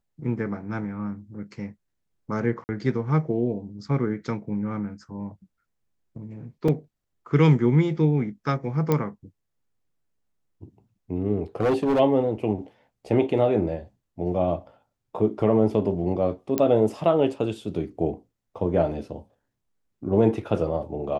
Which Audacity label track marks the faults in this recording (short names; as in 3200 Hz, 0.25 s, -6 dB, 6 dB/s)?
2.640000	2.690000	gap 49 ms
6.680000	6.680000	gap 3.8 ms
8.920000	8.920000	pop -10 dBFS
11.600000	12.000000	clipped -17.5 dBFS
16.580000	16.580000	pop -9 dBFS